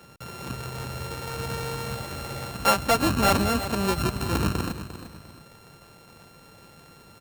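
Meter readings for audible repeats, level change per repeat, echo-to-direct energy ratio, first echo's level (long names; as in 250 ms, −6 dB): 2, −9.0 dB, −11.5 dB, −12.0 dB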